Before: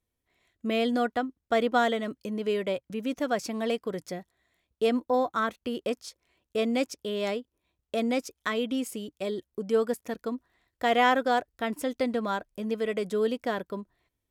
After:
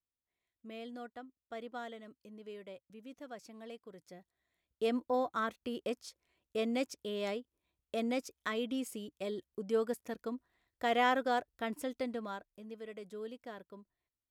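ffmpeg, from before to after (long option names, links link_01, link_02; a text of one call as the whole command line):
ffmpeg -i in.wav -af "volume=-7dB,afade=type=in:start_time=4.02:duration=0.93:silence=0.237137,afade=type=out:start_time=11.69:duration=0.95:silence=0.316228" out.wav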